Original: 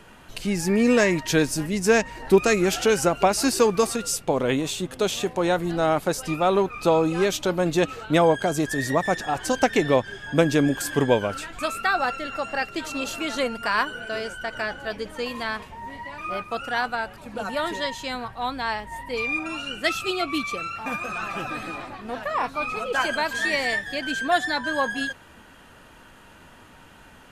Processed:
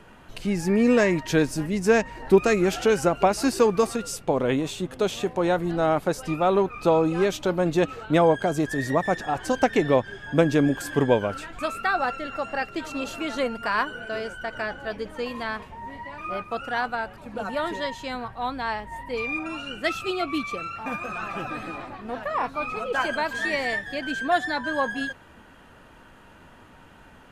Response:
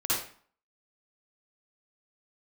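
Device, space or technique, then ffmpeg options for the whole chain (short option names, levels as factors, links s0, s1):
behind a face mask: -af "highshelf=f=2800:g=-8"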